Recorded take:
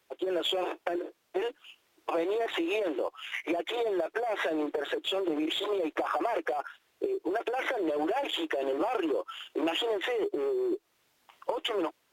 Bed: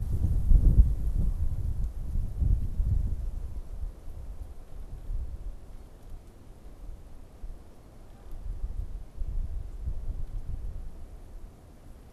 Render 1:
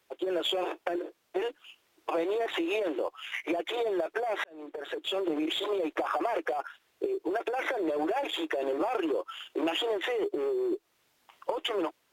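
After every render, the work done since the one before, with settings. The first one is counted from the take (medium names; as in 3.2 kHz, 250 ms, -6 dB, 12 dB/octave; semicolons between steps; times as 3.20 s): 4.44–5.20 s: fade in; 7.41–8.98 s: band-stop 3 kHz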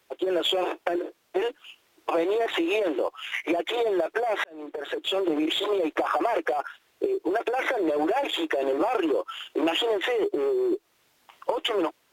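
trim +5 dB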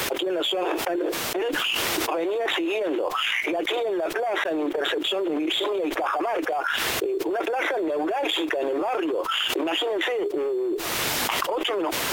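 peak limiter -21.5 dBFS, peak gain reduction 10.5 dB; level flattener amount 100%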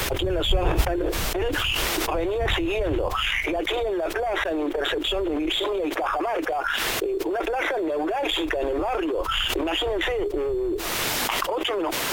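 add bed -3.5 dB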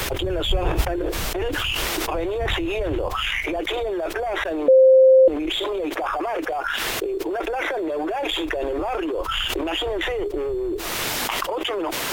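4.68–5.28 s: bleep 524 Hz -8.5 dBFS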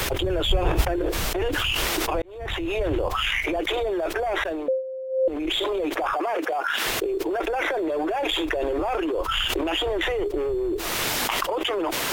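2.22–2.81 s: fade in; 4.39–5.53 s: dip -21 dB, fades 0.44 s; 6.13–6.86 s: high-pass 200 Hz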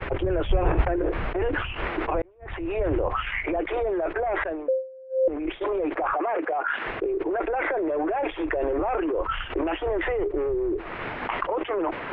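inverse Chebyshev low-pass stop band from 7 kHz, stop band 60 dB; expander -25 dBFS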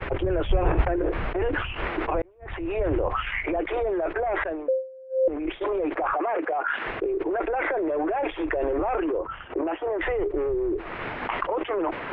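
9.17–9.99 s: band-pass filter 260 Hz -> 830 Hz, Q 0.51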